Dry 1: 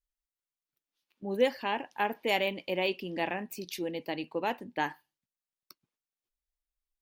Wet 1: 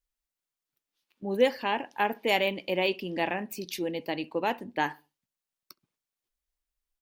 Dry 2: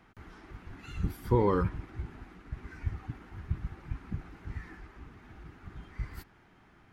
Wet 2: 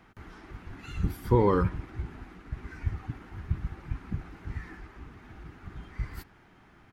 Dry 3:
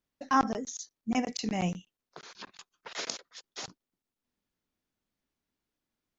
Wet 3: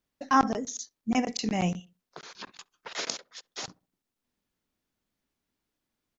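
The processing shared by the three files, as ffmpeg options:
ffmpeg -i in.wav -filter_complex "[0:a]asplit=2[link_01][link_02];[link_02]adelay=67,lowpass=frequency=880:poles=1,volume=-22dB,asplit=2[link_03][link_04];[link_04]adelay=67,lowpass=frequency=880:poles=1,volume=0.39,asplit=2[link_05][link_06];[link_06]adelay=67,lowpass=frequency=880:poles=1,volume=0.39[link_07];[link_01][link_03][link_05][link_07]amix=inputs=4:normalize=0,volume=3dB" out.wav

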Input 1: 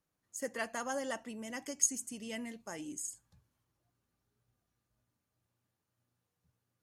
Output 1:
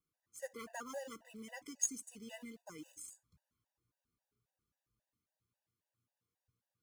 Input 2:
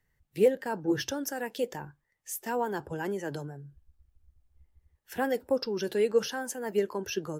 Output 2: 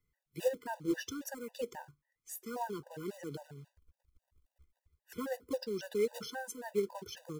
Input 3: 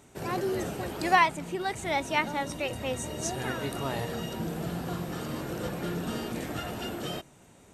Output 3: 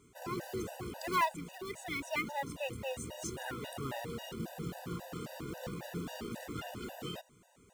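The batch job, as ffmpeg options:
ffmpeg -i in.wav -af "acrusher=bits=4:mode=log:mix=0:aa=0.000001,afftfilt=real='re*gt(sin(2*PI*3.7*pts/sr)*(1-2*mod(floor(b*sr/1024/500),2)),0)':imag='im*gt(sin(2*PI*3.7*pts/sr)*(1-2*mod(floor(b*sr/1024/500),2)),0)':win_size=1024:overlap=0.75,volume=-5dB" out.wav

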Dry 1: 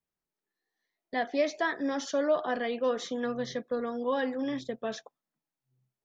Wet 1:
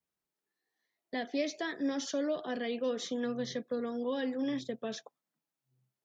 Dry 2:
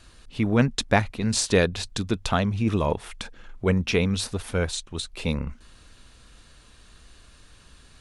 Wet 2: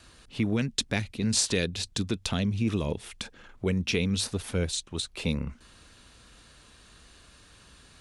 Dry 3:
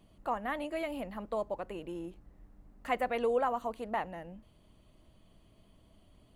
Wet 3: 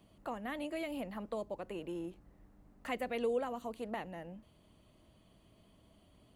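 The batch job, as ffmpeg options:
ffmpeg -i in.wav -filter_complex "[0:a]highpass=frequency=77:poles=1,acrossover=split=480|2200[link_01][link_02][link_03];[link_01]alimiter=limit=-19dB:level=0:latency=1:release=240[link_04];[link_02]acompressor=threshold=-44dB:ratio=6[link_05];[link_04][link_05][link_03]amix=inputs=3:normalize=0" out.wav

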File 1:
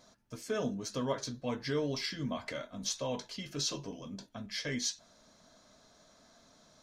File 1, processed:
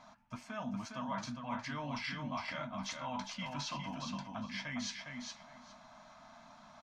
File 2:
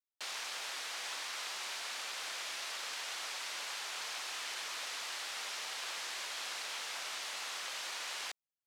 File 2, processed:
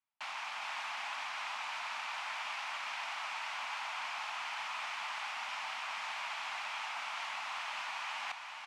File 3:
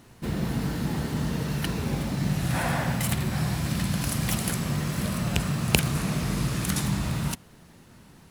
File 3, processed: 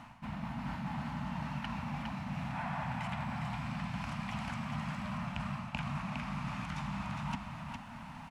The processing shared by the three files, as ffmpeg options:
ffmpeg -i in.wav -filter_complex "[0:a]acrossover=split=7700[link_01][link_02];[link_02]acompressor=threshold=-47dB:ratio=4:attack=1:release=60[link_03];[link_01][link_03]amix=inputs=2:normalize=0,firequalizer=gain_entry='entry(110,0);entry(240,5);entry(400,-24);entry(610,3);entry(870,13);entry(1700,4);entry(2400,8);entry(3800,-3);entry(12000,-14)':delay=0.05:min_phase=1,areverse,acompressor=threshold=-38dB:ratio=6,areverse,aecho=1:1:409|818|1227:0.562|0.0956|0.0163" out.wav

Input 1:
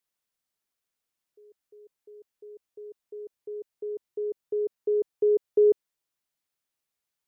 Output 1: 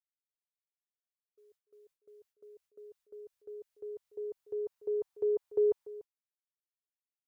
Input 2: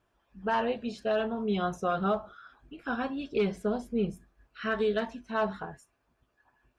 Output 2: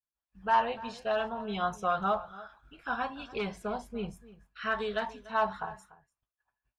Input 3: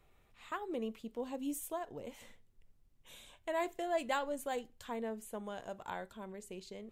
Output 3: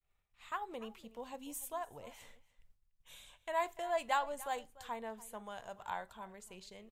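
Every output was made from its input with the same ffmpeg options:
ffmpeg -i in.wav -filter_complex "[0:a]agate=range=-33dB:threshold=-57dB:ratio=3:detection=peak,equalizer=frequency=310:width=0.76:gain=-11,asplit=2[link_01][link_02];[link_02]adelay=291.5,volume=-18dB,highshelf=frequency=4000:gain=-6.56[link_03];[link_01][link_03]amix=inputs=2:normalize=0,adynamicequalizer=threshold=0.00282:dfrequency=910:dqfactor=1.7:tfrequency=910:tqfactor=1.7:attack=5:release=100:ratio=0.375:range=4:mode=boostabove:tftype=bell" out.wav

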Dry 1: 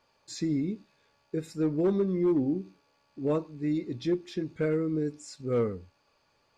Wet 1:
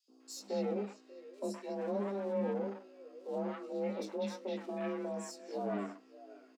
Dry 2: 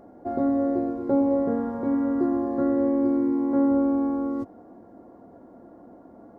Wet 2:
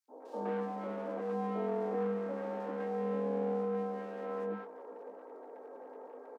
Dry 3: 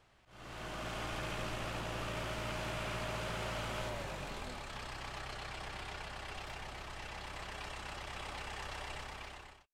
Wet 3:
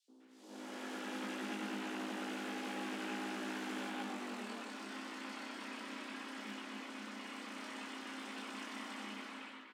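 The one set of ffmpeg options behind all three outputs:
ffmpeg -i in.wav -filter_complex "[0:a]alimiter=limit=-24dB:level=0:latency=1,asplit=2[link_01][link_02];[link_02]aecho=0:1:589:0.0794[link_03];[link_01][link_03]amix=inputs=2:normalize=0,adynamicequalizer=threshold=0.00631:dfrequency=320:dqfactor=1.4:tfrequency=320:tqfactor=1.4:attack=5:release=100:ratio=0.375:range=1.5:mode=cutabove:tftype=bell,flanger=delay=17.5:depth=2.2:speed=0.62,aeval=exprs='clip(val(0),-1,0.00531)':channel_layout=same,acrossover=split=320[link_04][link_05];[link_05]acompressor=threshold=-42dB:ratio=1.5[link_06];[link_04][link_06]amix=inputs=2:normalize=0,aeval=exprs='val(0)+0.000562*(sin(2*PI*60*n/s)+sin(2*PI*2*60*n/s)/2+sin(2*PI*3*60*n/s)/3+sin(2*PI*4*60*n/s)/4+sin(2*PI*5*60*n/s)/5)':channel_layout=same,afreqshift=200,highshelf=frequency=12000:gain=-5.5,acrossover=split=930|4000[link_07][link_08][link_09];[link_07]adelay=80[link_10];[link_08]adelay=200[link_11];[link_10][link_11][link_09]amix=inputs=3:normalize=0,volume=3dB" out.wav

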